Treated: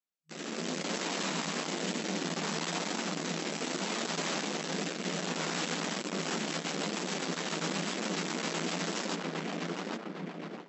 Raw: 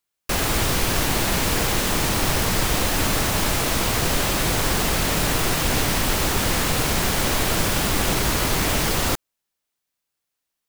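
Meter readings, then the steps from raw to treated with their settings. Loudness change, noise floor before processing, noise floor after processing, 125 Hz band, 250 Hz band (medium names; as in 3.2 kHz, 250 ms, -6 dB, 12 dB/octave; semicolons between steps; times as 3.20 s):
-13.5 dB, -82 dBFS, -44 dBFS, -16.5 dB, -8.5 dB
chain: filtered feedback delay 812 ms, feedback 43%, low-pass 2.6 kHz, level -8 dB; rotary cabinet horn 0.65 Hz, later 7.5 Hz, at 5.86 s; bass shelf 260 Hz +6.5 dB; valve stage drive 33 dB, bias 0.75; vibrato 0.49 Hz 10 cents; FFT band-pass 160–7900 Hz; flange 1 Hz, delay 8.6 ms, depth 5.7 ms, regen -33%; level rider gain up to 11 dB; trim -3.5 dB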